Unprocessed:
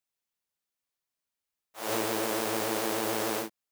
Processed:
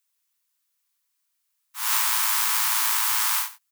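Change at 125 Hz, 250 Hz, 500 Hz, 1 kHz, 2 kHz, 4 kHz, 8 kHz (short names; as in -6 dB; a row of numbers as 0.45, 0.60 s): under -40 dB, under -40 dB, under -30 dB, +4.5 dB, +7.5 dB, +9.5 dB, +12.5 dB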